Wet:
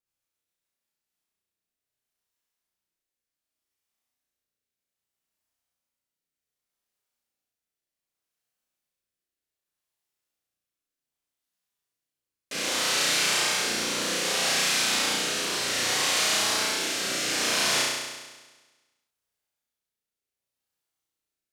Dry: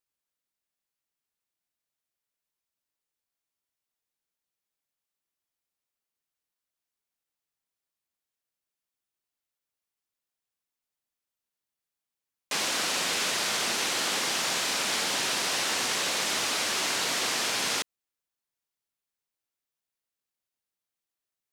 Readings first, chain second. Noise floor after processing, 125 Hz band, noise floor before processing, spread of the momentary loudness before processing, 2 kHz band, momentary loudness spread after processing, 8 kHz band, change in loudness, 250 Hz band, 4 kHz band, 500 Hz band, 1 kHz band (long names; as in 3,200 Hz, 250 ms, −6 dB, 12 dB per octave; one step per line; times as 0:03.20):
below −85 dBFS, +4.0 dB, below −85 dBFS, 1 LU, +2.5 dB, 6 LU, +2.5 dB, +2.5 dB, +3.5 dB, +2.5 dB, +3.0 dB, +1.0 dB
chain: rotating-speaker cabinet horn 7.5 Hz, later 0.65 Hz, at 0:00.41
on a send: flutter between parallel walls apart 5.8 metres, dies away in 1.3 s